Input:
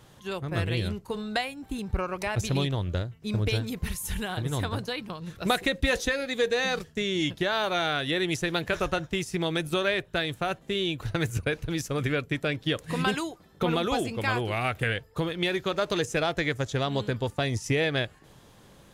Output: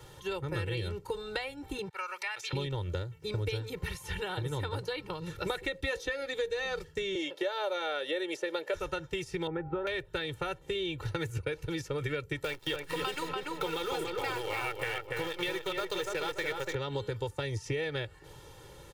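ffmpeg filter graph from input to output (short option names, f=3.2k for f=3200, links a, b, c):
-filter_complex "[0:a]asettb=1/sr,asplit=3[a][b][c];[a]atrim=end=1.894[d];[b]atrim=start=1.89:end=2.53,asetpts=PTS-STARTPTS,afade=t=in:d=0.004:c=qsin,afade=t=out:st=0.636:d=0.004:c=qsin,highpass=1.4k,agate=range=-33dB:threshold=-56dB:ratio=3:release=100:detection=peak[e];[c]atrim=start=2.526[f];[d][e]acrossfade=d=0.004:c1=hsin:c2=qsin[g];[g][f]acrossfade=d=0.004:c1=qsin:c2=hsin,asettb=1/sr,asplit=3[h][i][j];[h]atrim=end=7.154[k];[i]atrim=start=7.15:end=8.74,asetpts=PTS-STARTPTS,afade=t=in:d=0.004:c=qsin,afade=t=out:st=1.586:d=0.004:c=qsin,highpass=f=290:w=0.5412,highpass=f=290:w=1.3066,equalizer=f=590:t=o:w=0.51:g=12[l];[j]atrim=start=8.736[m];[k][l]acrossfade=d=0.004:c1=hsin:c2=qsin[n];[n][m]acrossfade=d=0.004:c1=qsin:c2=hsin,asettb=1/sr,asplit=3[o][p][q];[o]atrim=end=9.474[r];[p]atrim=start=9.47:end=9.87,asetpts=PTS-STARTPTS,afade=t=in:d=0.004:c=qsin,afade=t=out:st=0.396:d=0.004:c=qsin,lowpass=f=1.6k:w=0.5412,lowpass=f=1.6k:w=1.3066,aeval=exprs='val(0)+0.00562*sin(2*PI*800*n/s)':c=same[s];[q]atrim=start=9.866[t];[r][s]acrossfade=d=0.004:c1=hsin:c2=qsin[u];[u][t]acrossfade=d=0.004:c1=qsin:c2=hsin,asettb=1/sr,asplit=3[v][w][x];[v]atrim=end=12.444[y];[w]atrim=start=12.44:end=16.75,asetpts=PTS-STARTPTS,afade=t=in:d=0.004:c=qsin,afade=t=out:st=4.306:d=0.004:c=qsin,aemphasis=mode=production:type=bsi,acrusher=bits=6:dc=4:mix=0:aa=0.000001,asplit=2[z][aa];[aa]adelay=289,lowpass=f=2k:p=1,volume=-3.5dB,asplit=2[ab][ac];[ac]adelay=289,lowpass=f=2k:p=1,volume=0.37,asplit=2[ad][ae];[ae]adelay=289,lowpass=f=2k:p=1,volume=0.37,asplit=2[af][ag];[ag]adelay=289,lowpass=f=2k:p=1,volume=0.37,asplit=2[ah][ai];[ai]adelay=289,lowpass=f=2k:p=1,volume=0.37[aj];[z][ab][ad][af][ah][aj]amix=inputs=6:normalize=0,atrim=end_sample=190071[ak];[x]atrim=start=16.746[al];[y][ak]acrossfade=d=0.004:c1=hsin:c2=qsin[am];[am][al]acrossfade=d=0.004:c1=qsin:c2=hsin,aecho=1:1:2.2:0.99,acrossover=split=87|4500[an][ao][ap];[an]acompressor=threshold=-49dB:ratio=4[aq];[ao]acompressor=threshold=-33dB:ratio=4[ar];[ap]acompressor=threshold=-56dB:ratio=4[as];[aq][ar][as]amix=inputs=3:normalize=0"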